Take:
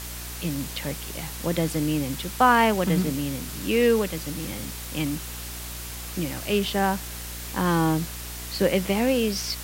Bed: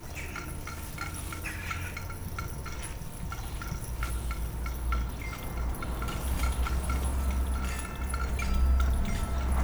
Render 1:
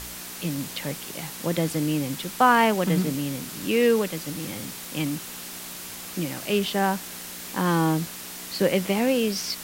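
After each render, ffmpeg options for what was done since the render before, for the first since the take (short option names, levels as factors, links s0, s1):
-af "bandreject=f=60:t=h:w=4,bandreject=f=120:t=h:w=4"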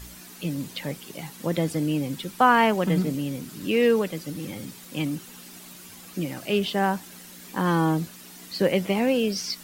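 -af "afftdn=nr=10:nf=-38"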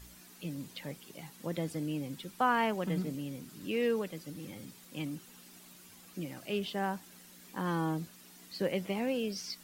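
-af "volume=0.299"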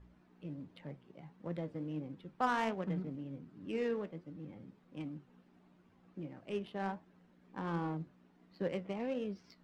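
-af "flanger=delay=9.6:depth=7.4:regen=65:speed=1.4:shape=triangular,adynamicsmooth=sensitivity=6.5:basefreq=1200"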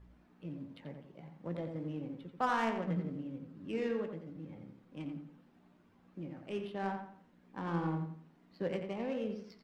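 -filter_complex "[0:a]asplit=2[s0][s1];[s1]adelay=18,volume=0.224[s2];[s0][s2]amix=inputs=2:normalize=0,asplit=2[s3][s4];[s4]adelay=87,lowpass=f=3400:p=1,volume=0.501,asplit=2[s5][s6];[s6]adelay=87,lowpass=f=3400:p=1,volume=0.36,asplit=2[s7][s8];[s8]adelay=87,lowpass=f=3400:p=1,volume=0.36,asplit=2[s9][s10];[s10]adelay=87,lowpass=f=3400:p=1,volume=0.36[s11];[s3][s5][s7][s9][s11]amix=inputs=5:normalize=0"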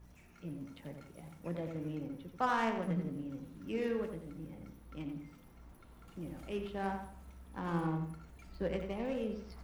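-filter_complex "[1:a]volume=0.0596[s0];[0:a][s0]amix=inputs=2:normalize=0"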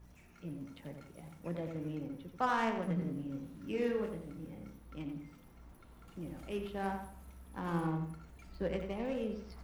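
-filter_complex "[0:a]asettb=1/sr,asplit=3[s0][s1][s2];[s0]atrim=end=2.994[s3];[s1]atrim=start=2.99:end=4.78,asetpts=PTS-STARTPTS,afade=t=in:d=0.004:c=qsin,afade=t=out:st=1.786:d=0.004:c=qsin,asplit=2[s4][s5];[s5]adelay=29,volume=0.501[s6];[s4][s6]amix=inputs=2:normalize=0,atrim=end_sample=78939[s7];[s2]atrim=start=4.776[s8];[s3][s7]acrossfade=d=0.004:c1=hsin:c2=qsin[s9];[s9][s8]acrossfade=d=0.004:c1=qsin:c2=hsin,asettb=1/sr,asplit=3[s10][s11][s12];[s10]atrim=end=6.504[s13];[s11]atrim=start=6.5:end=7.91,asetpts=PTS-STARTPTS,afade=t=in:d=0.004:c=qsin,afade=t=out:st=1.406:d=0.004:c=qsin,equalizer=f=12000:t=o:w=0.46:g=8.5[s14];[s12]atrim=start=7.906[s15];[s13][s14]acrossfade=d=0.004:c1=hsin:c2=qsin[s16];[s16][s15]acrossfade=d=0.004:c1=qsin:c2=hsin"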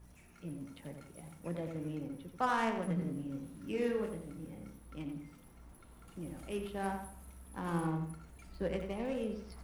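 -af "equalizer=f=10000:w=2:g=9.5"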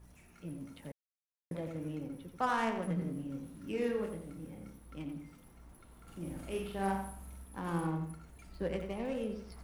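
-filter_complex "[0:a]asettb=1/sr,asplit=3[s0][s1][s2];[s0]atrim=end=6.024[s3];[s1]atrim=start=6.02:end=7.45,asetpts=PTS-STARTPTS,afade=t=in:d=0.004:c=qsin,afade=t=out:st=1.426:d=0.004:c=qsin,asplit=2[s4][s5];[s5]adelay=46,volume=0.75[s6];[s4][s6]amix=inputs=2:normalize=0,atrim=end_sample=63063[s7];[s2]atrim=start=7.446[s8];[s3][s7]acrossfade=d=0.004:c1=hsin:c2=qsin[s9];[s9][s8]acrossfade=d=0.004:c1=qsin:c2=hsin,asplit=3[s10][s11][s12];[s10]atrim=end=0.92,asetpts=PTS-STARTPTS,afade=t=out:st=0.916:d=0.004:c=hsin[s13];[s11]atrim=start=0.92:end=1.51,asetpts=PTS-STARTPTS,volume=0[s14];[s12]atrim=start=1.51,asetpts=PTS-STARTPTS,afade=t=in:d=0.004:c=hsin[s15];[s13][s14][s15]concat=n=3:v=0:a=1"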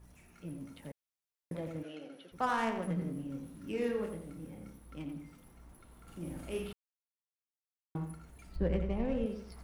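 -filter_complex "[0:a]asplit=3[s0][s1][s2];[s0]afade=t=out:st=1.82:d=0.02[s3];[s1]highpass=420,equalizer=f=660:t=q:w=4:g=7,equalizer=f=970:t=q:w=4:g=-8,equalizer=f=1500:t=q:w=4:g=7,equalizer=f=3000:t=q:w=4:g=9,equalizer=f=4300:t=q:w=4:g=5,equalizer=f=8000:t=q:w=4:g=-7,lowpass=f=9900:w=0.5412,lowpass=f=9900:w=1.3066,afade=t=in:st=1.82:d=0.02,afade=t=out:st=2.31:d=0.02[s4];[s2]afade=t=in:st=2.31:d=0.02[s5];[s3][s4][s5]amix=inputs=3:normalize=0,asettb=1/sr,asplit=3[s6][s7][s8];[s6]atrim=end=8.564[s9];[s7]atrim=start=8.56:end=9.26,asetpts=PTS-STARTPTS,afade=t=in:d=0.004:c=qsin,afade=t=out:st=0.696:d=0.004:c=qsin,aemphasis=mode=reproduction:type=bsi[s10];[s8]atrim=start=9.256[s11];[s9][s10]acrossfade=d=0.004:c1=hsin:c2=qsin[s12];[s12][s11]acrossfade=d=0.004:c1=qsin:c2=hsin,asplit=3[s13][s14][s15];[s13]atrim=end=6.73,asetpts=PTS-STARTPTS,afade=t=out:st=6.726:d=0.004:c=hsin[s16];[s14]atrim=start=6.73:end=7.95,asetpts=PTS-STARTPTS,volume=0[s17];[s15]atrim=start=7.95,asetpts=PTS-STARTPTS,afade=t=in:d=0.004:c=hsin[s18];[s16][s17][s18]concat=n=3:v=0:a=1"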